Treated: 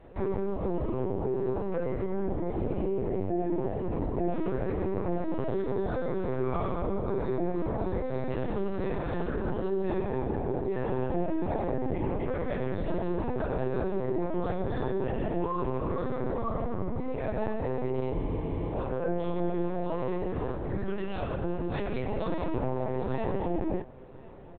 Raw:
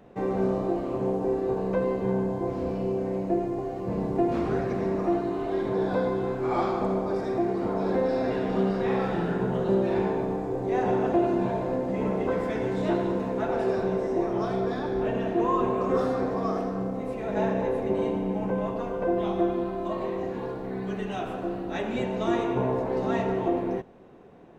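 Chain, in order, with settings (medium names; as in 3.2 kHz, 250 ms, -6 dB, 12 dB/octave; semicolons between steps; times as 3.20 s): peak limiter -24 dBFS, peak gain reduction 11 dB; on a send at -7 dB: reverberation RT60 0.15 s, pre-delay 3 ms; on the sum: LPC vocoder at 8 kHz pitch kept; delay 1044 ms -21.5 dB; spectral freeze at 18.15 s, 0.58 s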